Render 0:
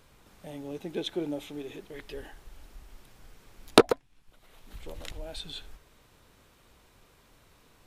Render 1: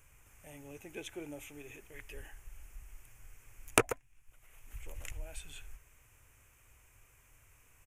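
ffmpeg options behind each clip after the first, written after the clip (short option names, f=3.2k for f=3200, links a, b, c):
-af "firequalizer=gain_entry='entry(120,0);entry(170,-16);entry(250,-12);entry(2500,2);entry(4000,-21);entry(6400,3)':delay=0.05:min_phase=1,volume=-1dB"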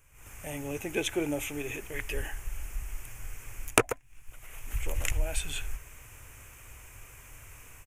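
-af "dynaudnorm=f=130:g=3:m=15dB,volume=-1dB"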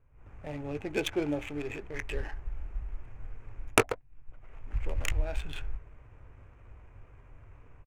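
-filter_complex "[0:a]asplit=2[a][b];[b]adelay=20,volume=-12.5dB[c];[a][c]amix=inputs=2:normalize=0,adynamicsmooth=sensitivity=5:basefreq=920"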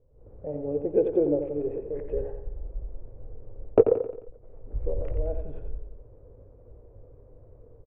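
-filter_complex "[0:a]lowpass=f=500:t=q:w=4.9,asplit=2[a][b];[b]aecho=0:1:88|176|264|352|440:0.398|0.187|0.0879|0.0413|0.0194[c];[a][c]amix=inputs=2:normalize=0"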